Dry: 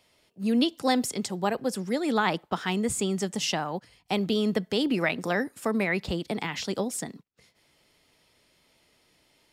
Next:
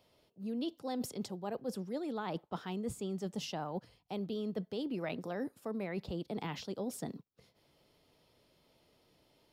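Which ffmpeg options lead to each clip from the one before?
-af "equalizer=f=125:t=o:w=1:g=3,equalizer=f=500:t=o:w=1:g=3,equalizer=f=2k:t=o:w=1:g=-8,equalizer=f=8k:t=o:w=1:g=-10,areverse,acompressor=threshold=-33dB:ratio=6,areverse,volume=-2.5dB"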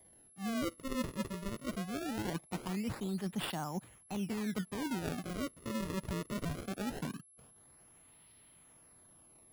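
-af "equalizer=f=500:t=o:w=0.97:g=-11,acrusher=samples=32:mix=1:aa=0.000001:lfo=1:lforange=51.2:lforate=0.21,aeval=exprs='val(0)+0.000631*sin(2*PI*11000*n/s)':c=same,volume=4dB"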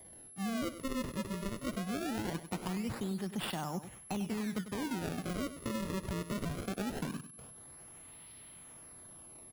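-af "acompressor=threshold=-42dB:ratio=5,aecho=1:1:98|196|294:0.251|0.0603|0.0145,volume=7.5dB"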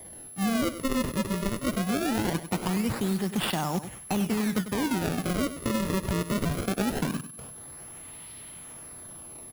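-af "acrusher=bits=3:mode=log:mix=0:aa=0.000001,volume=9dB"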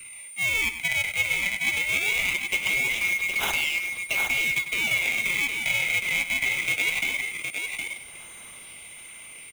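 -filter_complex "[0:a]afftfilt=real='real(if(lt(b,920),b+92*(1-2*mod(floor(b/92),2)),b),0)':imag='imag(if(lt(b,920),b+92*(1-2*mod(floor(b/92),2)),b),0)':win_size=2048:overlap=0.75,acrossover=split=230|1100|2200[a][b][c][d];[c]asoftclip=type=tanh:threshold=-33.5dB[e];[a][b][e][d]amix=inputs=4:normalize=0,aecho=1:1:764:0.531,volume=2.5dB"

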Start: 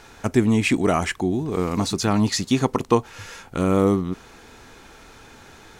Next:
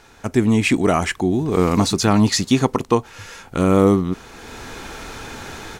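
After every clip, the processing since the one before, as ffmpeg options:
-af "dynaudnorm=f=240:g=3:m=15dB,volume=-2.5dB"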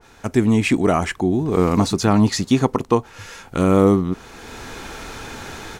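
-af "adynamicequalizer=threshold=0.02:dfrequency=1700:dqfactor=0.7:tfrequency=1700:tqfactor=0.7:attack=5:release=100:ratio=0.375:range=2.5:mode=cutabove:tftype=highshelf"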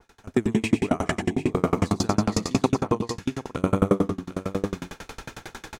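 -filter_complex "[0:a]asplit=2[a][b];[b]aecho=0:1:104|188|748|799:0.531|0.473|0.447|0.178[c];[a][c]amix=inputs=2:normalize=0,aeval=exprs='val(0)*pow(10,-32*if(lt(mod(11*n/s,1),2*abs(11)/1000),1-mod(11*n/s,1)/(2*abs(11)/1000),(mod(11*n/s,1)-2*abs(11)/1000)/(1-2*abs(11)/1000))/20)':c=same"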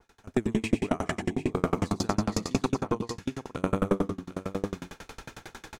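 -af "aeval=exprs='0.631*(cos(1*acos(clip(val(0)/0.631,-1,1)))-cos(1*PI/2))+0.224*(cos(2*acos(clip(val(0)/0.631,-1,1)))-cos(2*PI/2))':c=same,volume=-5dB"

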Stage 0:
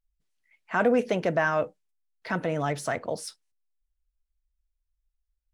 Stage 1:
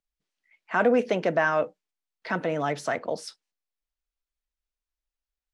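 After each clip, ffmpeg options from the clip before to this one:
-filter_complex "[0:a]acrossover=split=160 7100:gain=0.178 1 0.251[a][b][c];[a][b][c]amix=inputs=3:normalize=0,volume=1.5dB"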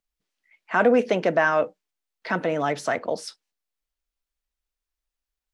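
-af "equalizer=f=150:t=o:w=0.29:g=-3.5,volume=3dB"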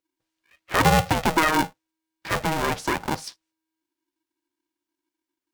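-af "aeval=exprs='val(0)*sgn(sin(2*PI*320*n/s))':c=same"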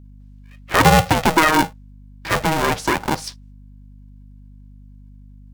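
-af "aeval=exprs='val(0)+0.00447*(sin(2*PI*50*n/s)+sin(2*PI*2*50*n/s)/2+sin(2*PI*3*50*n/s)/3+sin(2*PI*4*50*n/s)/4+sin(2*PI*5*50*n/s)/5)':c=same,volume=5.5dB"

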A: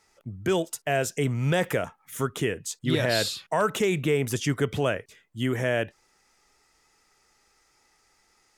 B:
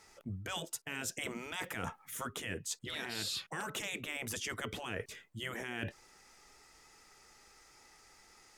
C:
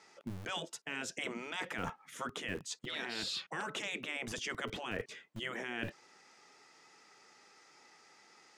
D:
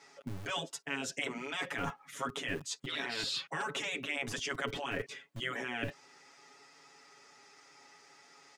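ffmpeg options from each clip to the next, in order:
-af "afftfilt=real='re*lt(hypot(re,im),0.178)':imag='im*lt(hypot(re,im),0.178)':win_size=1024:overlap=0.75,areverse,acompressor=threshold=-40dB:ratio=12,areverse,volume=4dB"
-filter_complex "[0:a]lowpass=5.7k,acrossover=split=140[a][b];[a]acrusher=bits=5:dc=4:mix=0:aa=0.000001[c];[c][b]amix=inputs=2:normalize=0,volume=1dB"
-af "aecho=1:1:7.2:0.94"

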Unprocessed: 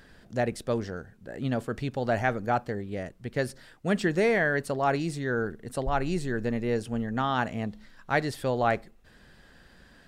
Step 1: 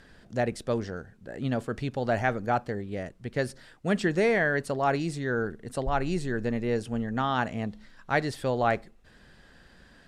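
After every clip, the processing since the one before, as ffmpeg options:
-af "lowpass=11k"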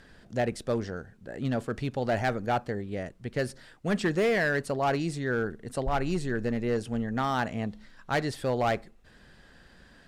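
-af "asoftclip=type=hard:threshold=-20.5dB"

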